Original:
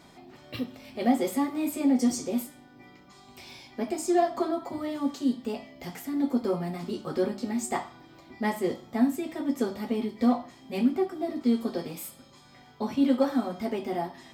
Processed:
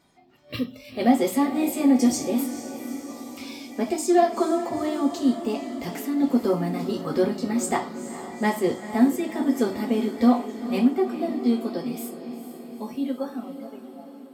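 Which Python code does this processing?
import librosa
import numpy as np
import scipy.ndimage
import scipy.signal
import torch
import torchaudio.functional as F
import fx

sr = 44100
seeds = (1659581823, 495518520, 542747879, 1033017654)

y = fx.fade_out_tail(x, sr, length_s=3.88)
y = fx.peak_eq(y, sr, hz=1300.0, db=6.0, octaves=0.63, at=(2.4, 3.51))
y = fx.noise_reduce_blind(y, sr, reduce_db=15)
y = fx.echo_diffused(y, sr, ms=452, feedback_pct=63, wet_db=-11.5)
y = y * 10.0 ** (5.0 / 20.0)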